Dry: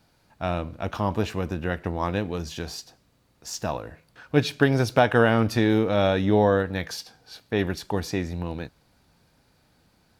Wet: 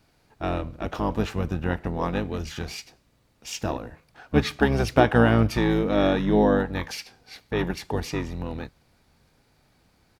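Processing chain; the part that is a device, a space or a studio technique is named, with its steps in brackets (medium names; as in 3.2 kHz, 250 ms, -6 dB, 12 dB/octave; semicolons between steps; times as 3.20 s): octave pedal (harmony voices -12 st -3 dB); trim -1.5 dB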